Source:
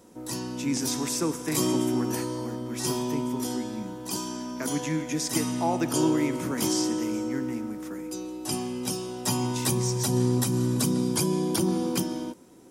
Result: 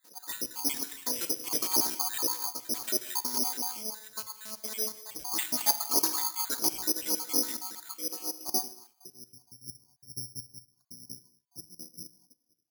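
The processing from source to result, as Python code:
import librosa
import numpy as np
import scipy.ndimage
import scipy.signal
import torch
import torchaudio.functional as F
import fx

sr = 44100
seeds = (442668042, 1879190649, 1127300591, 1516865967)

p1 = fx.spec_dropout(x, sr, seeds[0], share_pct=62)
p2 = fx.rider(p1, sr, range_db=4, speed_s=2.0)
p3 = p1 + (p2 * 10.0 ** (-2.0 / 20.0))
p4 = fx.filter_sweep_lowpass(p3, sr, from_hz=3100.0, to_hz=100.0, start_s=8.0, end_s=9.39, q=0.78)
p5 = 10.0 ** (-16.0 / 20.0) * np.tanh(p4 / 10.0 ** (-16.0 / 20.0))
p6 = fx.filter_lfo_bandpass(p5, sr, shape='sine', hz=4.3, low_hz=640.0, high_hz=2600.0, q=1.4)
p7 = fx.robotise(p6, sr, hz=216.0, at=(3.77, 5.16))
p8 = p7 + fx.echo_wet_highpass(p7, sr, ms=215, feedback_pct=52, hz=4000.0, wet_db=-13.0, dry=0)
p9 = fx.rev_gated(p8, sr, seeds[1], gate_ms=270, shape='falling', drr_db=10.5)
p10 = (np.kron(p9[::8], np.eye(8)[0]) * 8)[:len(p9)]
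y = p10 * 10.0 ** (-1.5 / 20.0)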